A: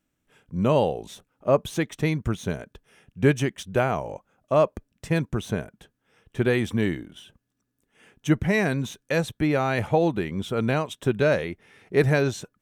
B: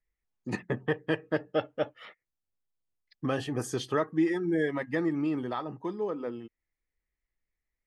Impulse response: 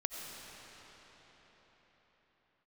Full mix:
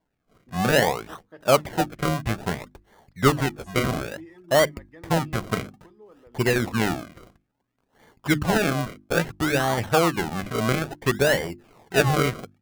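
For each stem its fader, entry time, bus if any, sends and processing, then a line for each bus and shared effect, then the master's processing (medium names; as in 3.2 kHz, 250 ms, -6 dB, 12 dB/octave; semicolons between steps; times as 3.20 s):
+0.5 dB, 0.00 s, no send, peaking EQ 1.1 kHz -6.5 dB 0.77 oct; decimation with a swept rate 34×, swing 100% 0.59 Hz; sweeping bell 3.3 Hz 770–2300 Hz +8 dB
-17.5 dB, 0.00 s, no send, none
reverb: none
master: hum notches 50/100/150/200/250/300/350 Hz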